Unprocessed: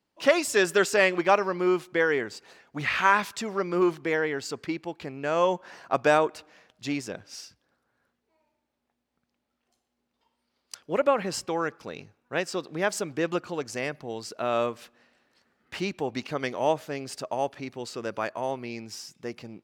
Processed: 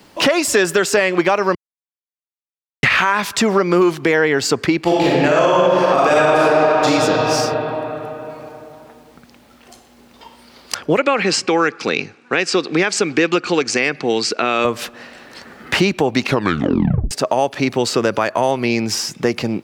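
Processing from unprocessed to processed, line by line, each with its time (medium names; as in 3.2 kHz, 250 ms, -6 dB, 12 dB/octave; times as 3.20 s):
1.55–2.83 s: mute
4.82–6.87 s: reverb throw, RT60 2.5 s, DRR -9.5 dB
10.97–14.65 s: cabinet simulation 230–8200 Hz, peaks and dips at 610 Hz -10 dB, 960 Hz -6 dB, 2.4 kHz +7 dB, 4.4 kHz +4 dB
16.23 s: tape stop 0.88 s
whole clip: compression 3:1, threshold -33 dBFS; loudness maximiser +23.5 dB; three bands compressed up and down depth 40%; trim -3.5 dB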